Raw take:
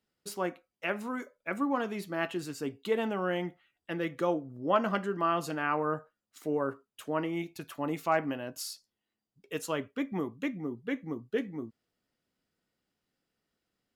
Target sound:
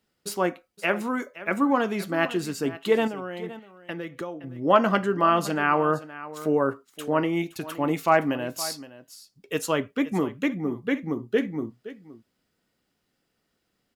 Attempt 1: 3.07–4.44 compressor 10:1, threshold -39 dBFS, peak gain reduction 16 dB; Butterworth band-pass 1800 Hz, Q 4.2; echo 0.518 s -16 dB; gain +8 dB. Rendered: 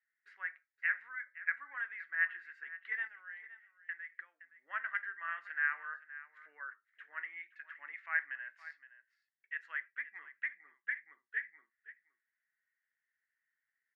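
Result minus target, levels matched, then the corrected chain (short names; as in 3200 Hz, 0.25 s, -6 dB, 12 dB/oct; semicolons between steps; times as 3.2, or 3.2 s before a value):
2000 Hz band +10.0 dB
3.07–4.44 compressor 10:1, threshold -39 dBFS, peak gain reduction 16 dB; echo 0.518 s -16 dB; gain +8 dB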